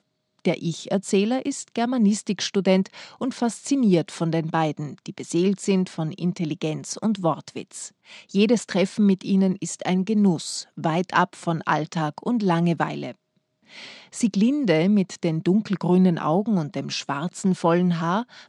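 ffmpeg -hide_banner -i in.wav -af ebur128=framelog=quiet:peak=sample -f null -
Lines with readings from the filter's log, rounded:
Integrated loudness:
  I:         -23.2 LUFS
  Threshold: -33.6 LUFS
Loudness range:
  LRA:         3.4 LU
  Threshold: -43.6 LUFS
  LRA low:   -25.4 LUFS
  LRA high:  -22.1 LUFS
Sample peak:
  Peak:       -3.4 dBFS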